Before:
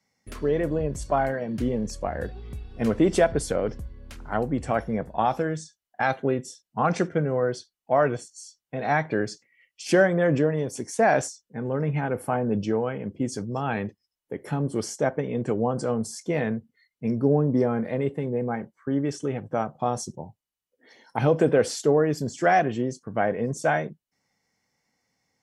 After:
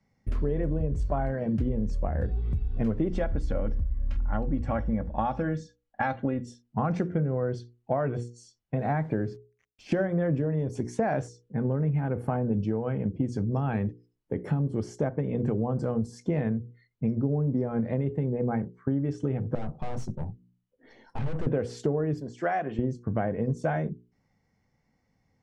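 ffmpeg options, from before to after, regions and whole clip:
-filter_complex "[0:a]asettb=1/sr,asplit=3[a][b][c];[a]atrim=end=3.124[d];[b]atrim=start=3.12:end=6.47,asetpts=PTS-STARTPTS,afade=t=in:d=0.004:c=qsin,afade=t=out:st=3.346:d=0.004:c=qsin,lowpass=6k,equalizer=f=370:t=o:w=1.2:g=-6,aecho=1:1:3.6:0.53,atrim=end_sample=147735[e];[c]atrim=start=6.466[f];[d][e]acrossfade=d=0.004:c1=hsin:c2=qsin[g];[g][f]acrossfade=d=0.004:c1=qsin:c2=hsin,asettb=1/sr,asplit=3[h][i][j];[h]atrim=end=8.784[k];[i]atrim=start=8.78:end=9.92,asetpts=PTS-STARTPTS,afade=t=in:d=0.004:c=qsin,afade=t=out:st=1.136:d=0.004:c=qsin,aemphasis=mode=reproduction:type=75kf,acrusher=bits=8:mix=0:aa=0.5[l];[j]atrim=start=9.916[m];[k][l]acrossfade=d=0.004:c1=hsin:c2=qsin[n];[n][m]acrossfade=d=0.004:c1=qsin:c2=hsin,asettb=1/sr,asplit=3[o][p][q];[o]atrim=end=19.554[r];[p]atrim=start=19.55:end=21.47,asetpts=PTS-STARTPTS,afade=t=in:d=0.004:c=qsin,afade=t=out:st=1.916:d=0.004:c=qsin,bandreject=f=60:t=h:w=6,bandreject=f=120:t=h:w=6,bandreject=f=180:t=h:w=6,bandreject=f=240:t=h:w=6,bandreject=f=300:t=h:w=6,aeval=exprs='(tanh(56.2*val(0)+0.35)-tanh(0.35))/56.2':c=same,acrusher=bits=9:mode=log:mix=0:aa=0.000001[s];[q]atrim=start=21.466[t];[r][s]acrossfade=d=0.004:c1=hsin:c2=qsin[u];[u][t]acrossfade=d=0.004:c1=qsin:c2=hsin,asettb=1/sr,asplit=3[v][w][x];[v]atrim=end=22.204[y];[w]atrim=start=22.2:end=22.79,asetpts=PTS-STARTPTS,afade=t=in:d=0.004:c=qsin,afade=t=out:st=0.586:d=0.004:c=qsin,highpass=f=890:p=1,highshelf=f=3.1k:g=-7.5[z];[x]atrim=start=22.786[aa];[y][z]acrossfade=d=0.004:c1=hsin:c2=qsin[ab];[ab][aa]acrossfade=d=0.004:c1=qsin:c2=hsin,aemphasis=mode=reproduction:type=riaa,bandreject=f=60:t=h:w=6,bandreject=f=120:t=h:w=6,bandreject=f=180:t=h:w=6,bandreject=f=240:t=h:w=6,bandreject=f=300:t=h:w=6,bandreject=f=360:t=h:w=6,bandreject=f=420:t=h:w=6,bandreject=f=480:t=h:w=6,acompressor=threshold=-24dB:ratio=6"

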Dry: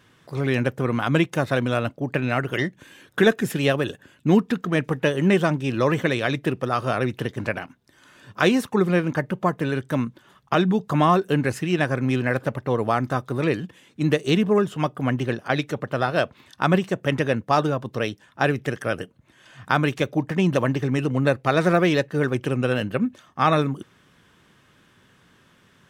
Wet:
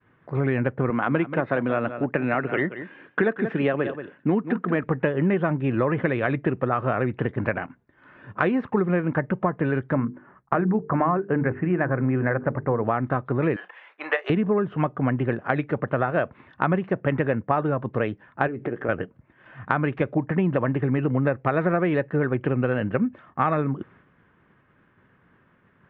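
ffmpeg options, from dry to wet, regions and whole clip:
-filter_complex "[0:a]asettb=1/sr,asplit=3[a][b][c];[a]atrim=end=0.904[d];[b]atrim=start=0.9:end=4.84,asetpts=PTS-STARTPTS,afade=t=in:d=0.004:c=qsin,afade=t=out:st=3.936:d=0.004:c=qsin,highpass=180,aecho=1:1:181:0.211,atrim=end_sample=173754[e];[c]atrim=start=4.836[f];[d][e]acrossfade=d=0.004:c1=hsin:c2=qsin[g];[g][f]acrossfade=d=0.004:c1=qsin:c2=hsin,asettb=1/sr,asplit=3[h][i][j];[h]atrim=end=9.934[k];[i]atrim=start=9.93:end=12.84,asetpts=PTS-STARTPTS,afade=t=in:d=0.004:c=qsin,afade=t=out:st=2.906:d=0.004:c=qsin,lowpass=f=2.1k:w=0.5412,lowpass=f=2.1k:w=1.3066,bandreject=f=50:t=h:w=6,bandreject=f=100:t=h:w=6,bandreject=f=150:t=h:w=6,bandreject=f=200:t=h:w=6,bandreject=f=250:t=h:w=6,bandreject=f=300:t=h:w=6,bandreject=f=350:t=h:w=6,bandreject=f=400:t=h:w=6,bandreject=f=450:t=h:w=6[l];[j]atrim=start=12.836[m];[k][l]acrossfade=d=0.004:c1=hsin:c2=qsin[n];[n][m]acrossfade=d=0.004:c1=qsin:c2=hsin,asettb=1/sr,asplit=3[o][p][q];[o]atrim=end=13.564[r];[p]atrim=start=13.56:end=14.3,asetpts=PTS-STARTPTS,afade=t=in:d=0.004:c=qsin,afade=t=out:st=0.736:d=0.004:c=qsin,highpass=f=680:w=0.5412,highpass=f=680:w=1.3066,acontrast=81,asplit=2[s][t];[t]adelay=32,volume=-13dB[u];[s][u]amix=inputs=2:normalize=0,atrim=end_sample=32634[v];[q]atrim=start=14.296[w];[r][v]acrossfade=d=0.004:c1=hsin:c2=qsin[x];[x][w]acrossfade=d=0.004:c1=qsin:c2=hsin,asettb=1/sr,asplit=3[y][z][aa];[y]atrim=end=18.474[ab];[z]atrim=start=18.47:end=18.89,asetpts=PTS-STARTPTS,afade=t=in:d=0.004:c=qsin,afade=t=out:st=0.416:d=0.004:c=qsin,acompressor=threshold=-34dB:ratio=8:attack=3.2:release=140:knee=1:detection=peak,equalizer=f=360:t=o:w=1.7:g=11,asplit=2[ac][ad];[ad]adelay=17,volume=-12.5dB[ae];[ac][ae]amix=inputs=2:normalize=0,atrim=end_sample=18522[af];[aa]atrim=start=18.886[ag];[ab][af]acrossfade=d=0.004:c1=hsin:c2=qsin[ah];[ah][ag]acrossfade=d=0.004:c1=qsin:c2=hsin,agate=range=-33dB:threshold=-51dB:ratio=3:detection=peak,lowpass=f=2.1k:w=0.5412,lowpass=f=2.1k:w=1.3066,acompressor=threshold=-22dB:ratio=6,volume=3.5dB"

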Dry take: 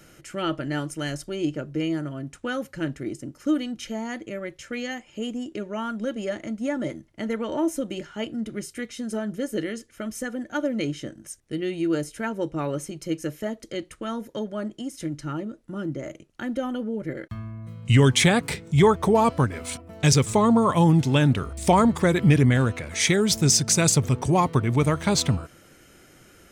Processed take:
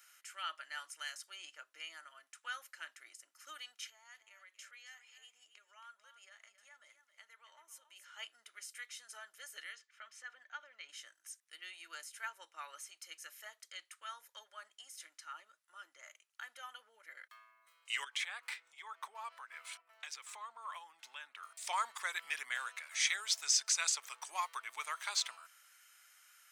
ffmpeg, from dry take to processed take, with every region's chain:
-filter_complex "[0:a]asettb=1/sr,asplit=3[a][b][c];[a]atrim=end=3.874[d];[b]atrim=start=3.87:end=8.12,asetpts=PTS-STARTPTS,afade=t=in:d=0.004:c=qsin,afade=t=out:st=4.246:d=0.004:c=qsin,acompressor=threshold=-41dB:ratio=3:attack=3.2:release=140:knee=1:detection=peak,aecho=1:1:273:0.282,atrim=end_sample=187425[e];[c]atrim=start=8.116[f];[d][e]acrossfade=d=0.004:c1=hsin:c2=qsin[g];[g][f]acrossfade=d=0.004:c1=qsin:c2=hsin,asettb=1/sr,asplit=3[h][i][j];[h]atrim=end=9.754[k];[i]atrim=start=9.75:end=10.89,asetpts=PTS-STARTPTS,afade=t=in:d=0.004:c=qsin,afade=t=out:st=1.136:d=0.004:c=qsin,lowpass=3.9k,acompressor=threshold=-27dB:ratio=6:attack=3.2:release=140:knee=1:detection=peak[l];[j]atrim=start=10.886[m];[k][l]acrossfade=d=0.004:c1=hsin:c2=qsin[n];[n][m]acrossfade=d=0.004:c1=qsin:c2=hsin,asettb=1/sr,asplit=3[o][p][q];[o]atrim=end=18.044[r];[p]atrim=start=18.04:end=21.43,asetpts=PTS-STARTPTS,afade=t=in:d=0.004:c=qsin,afade=t=out:st=3.386:d=0.004:c=qsin,bass=f=250:g=3,treble=f=4k:g=-10,acompressor=threshold=-23dB:ratio=10:attack=3.2:release=140:knee=1:detection=peak[s];[q]atrim=start=21.426[t];[r][s]acrossfade=d=0.004:c1=hsin:c2=qsin[u];[u][t]acrossfade=d=0.004:c1=qsin:c2=hsin,acrossover=split=7300[v][w];[w]acompressor=threshold=-45dB:ratio=4:attack=1:release=60[x];[v][x]amix=inputs=2:normalize=0,highpass=f=1.1k:w=0.5412,highpass=f=1.1k:w=1.3066,highshelf=f=9.4k:g=7,volume=-9dB"

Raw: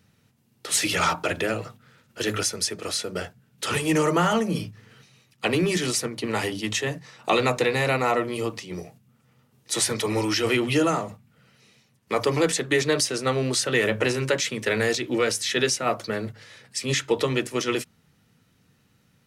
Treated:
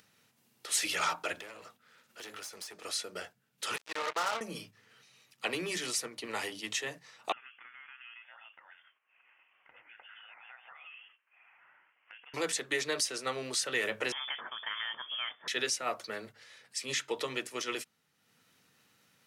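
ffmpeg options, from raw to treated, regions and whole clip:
-filter_complex "[0:a]asettb=1/sr,asplit=3[a][b][c];[a]atrim=end=1.394[d];[b]atrim=start=1.39:end=2.84,asetpts=PTS-STARTPTS,afade=t=in:d=0.004:c=qsin,afade=t=out:st=1.446:d=0.004:c=qsin,equalizer=f=120:w=4.9:g=-12,acompressor=threshold=-29dB:ratio=12:attack=3.2:release=140:knee=1:detection=peak,aeval=exprs='clip(val(0),-1,0.0119)':c=same[e];[c]atrim=start=2.836[f];[d][e]acrossfade=d=0.004:c1=hsin:c2=qsin[g];[g][f]acrossfade=d=0.004:c1=qsin:c2=hsin,asettb=1/sr,asplit=3[h][i][j];[h]atrim=end=3.764[k];[i]atrim=start=3.76:end=4.41,asetpts=PTS-STARTPTS,afade=t=in:d=0.004:c=qsin,afade=t=out:st=0.646:d=0.004:c=qsin,highpass=150,lowpass=5.4k,acrossover=split=430 2500:gain=0.112 1 0.2[l][m][n];[l][m][n]amix=inputs=3:normalize=0,acrusher=bits=3:mix=0:aa=0.5[o];[j]atrim=start=4.406[p];[k][o]acrossfade=d=0.004:c1=hsin:c2=qsin[q];[q][p]acrossfade=d=0.004:c1=qsin:c2=hsin,asettb=1/sr,asplit=3[r][s][t];[r]atrim=end=7.324[u];[s]atrim=start=7.32:end=12.34,asetpts=PTS-STARTPTS,afade=t=in:d=0.004:c=qsin,afade=t=out:st=5.016:d=0.004:c=qsin,highpass=f=1.1k:w=0.5412,highpass=f=1.1k:w=1.3066,acompressor=threshold=-40dB:ratio=8:attack=3.2:release=140:knee=1:detection=peak,lowpass=f=3.3k:t=q:w=0.5098,lowpass=f=3.3k:t=q:w=0.6013,lowpass=f=3.3k:t=q:w=0.9,lowpass=f=3.3k:t=q:w=2.563,afreqshift=-3900[v];[t]atrim=start=12.336[w];[u][v]acrossfade=d=0.004:c1=hsin:c2=qsin[x];[x][w]acrossfade=d=0.004:c1=qsin:c2=hsin,asettb=1/sr,asplit=3[y][z][aa];[y]atrim=end=14.124[ab];[z]atrim=start=14.12:end=15.48,asetpts=PTS-STARTPTS,afade=t=in:d=0.004:c=qsin,afade=t=out:st=1.356:d=0.004:c=qsin,tiltshelf=f=650:g=-5.5,acompressor=threshold=-28dB:ratio=2.5:attack=3.2:release=140:knee=1:detection=peak,lowpass=f=3.1k:t=q:w=0.5098,lowpass=f=3.1k:t=q:w=0.6013,lowpass=f=3.1k:t=q:w=0.9,lowpass=f=3.1k:t=q:w=2.563,afreqshift=-3600[ac];[aa]atrim=start=15.476[ad];[ab][ac]acrossfade=d=0.004:c1=hsin:c2=qsin[ae];[ae][ad]acrossfade=d=0.004:c1=qsin:c2=hsin,acompressor=mode=upward:threshold=-45dB:ratio=2.5,highpass=f=740:p=1,volume=-7dB"

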